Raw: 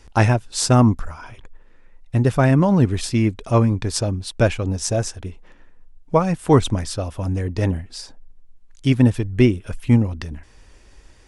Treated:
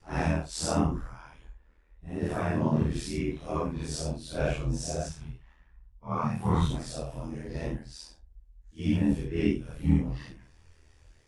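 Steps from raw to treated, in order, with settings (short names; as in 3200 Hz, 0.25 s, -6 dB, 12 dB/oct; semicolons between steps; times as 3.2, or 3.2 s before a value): phase scrambler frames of 0.2 s; chorus 0.87 Hz, delay 20 ms, depth 6.9 ms; 5.09–6.7 graphic EQ 125/250/500/1000/8000 Hz +11/-8/-9/+5/-5 dB; ring modulator 40 Hz; gain -5 dB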